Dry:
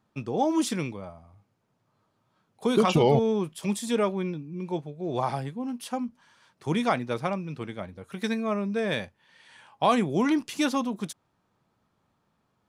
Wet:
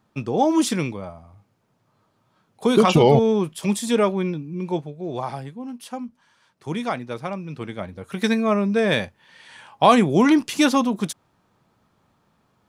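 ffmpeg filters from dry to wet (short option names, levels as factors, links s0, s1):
-af "volume=5.62,afade=t=out:st=4.72:d=0.5:silence=0.446684,afade=t=in:st=7.26:d=0.96:silence=0.354813"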